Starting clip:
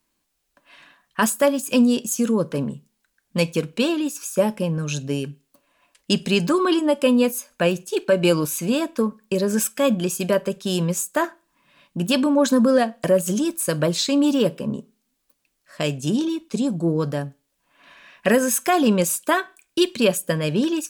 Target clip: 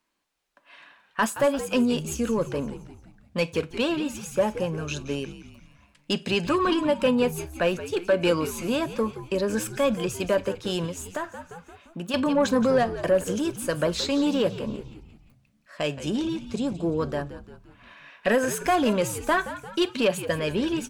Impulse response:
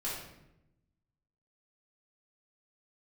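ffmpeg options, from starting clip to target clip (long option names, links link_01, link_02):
-filter_complex "[0:a]asplit=2[link_01][link_02];[link_02]highpass=frequency=720:poles=1,volume=11dB,asoftclip=type=tanh:threshold=-7dB[link_03];[link_01][link_03]amix=inputs=2:normalize=0,lowpass=frequency=2300:poles=1,volume=-6dB,asplit=6[link_04][link_05][link_06][link_07][link_08][link_09];[link_05]adelay=173,afreqshift=-86,volume=-13dB[link_10];[link_06]adelay=346,afreqshift=-172,volume=-18.8dB[link_11];[link_07]adelay=519,afreqshift=-258,volume=-24.7dB[link_12];[link_08]adelay=692,afreqshift=-344,volume=-30.5dB[link_13];[link_09]adelay=865,afreqshift=-430,volume=-36.4dB[link_14];[link_04][link_10][link_11][link_12][link_13][link_14]amix=inputs=6:normalize=0,asettb=1/sr,asplit=3[link_15][link_16][link_17];[link_15]atrim=end=10.864[link_18];[link_16]atrim=start=10.86:end=12.14,asetpts=PTS-STARTPTS,afade=type=in:duration=0.004:curve=qsin,afade=type=out:start_time=1.276:duration=0.004:curve=qsin,acompressor=threshold=-29dB:ratio=2[link_19];[link_17]atrim=start=12.136[link_20];[link_18][link_19]acrossfade=duration=0.004:curve1=hsin:curve2=qsin[link_21];[link_21][link_20]acrossfade=duration=0.004:curve1=qsin:curve2=hsin,volume=-4.5dB"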